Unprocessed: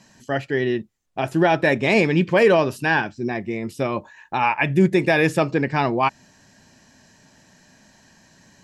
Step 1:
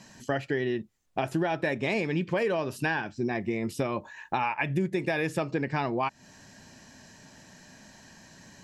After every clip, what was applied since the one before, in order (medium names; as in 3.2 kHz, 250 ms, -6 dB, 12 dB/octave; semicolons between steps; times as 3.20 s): compression 6:1, threshold -27 dBFS, peak gain reduction 15 dB; trim +1.5 dB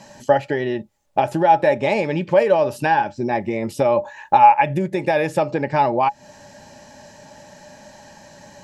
small resonant body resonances 590/830 Hz, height 18 dB, ringing for 80 ms; trim +5 dB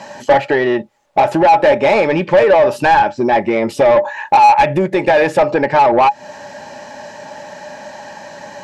overdrive pedal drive 22 dB, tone 1.7 kHz, clips at -1 dBFS